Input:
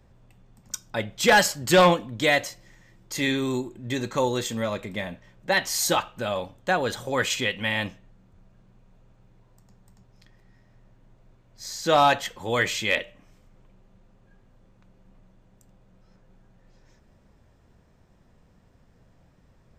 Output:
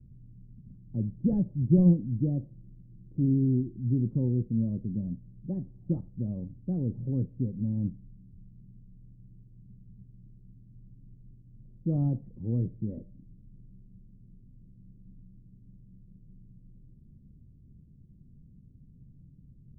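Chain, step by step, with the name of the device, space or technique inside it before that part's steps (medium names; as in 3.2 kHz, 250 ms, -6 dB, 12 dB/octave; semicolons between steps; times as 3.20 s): the neighbour's flat through the wall (low-pass 270 Hz 24 dB/octave; peaking EQ 140 Hz +6.5 dB 0.51 oct); trim +3.5 dB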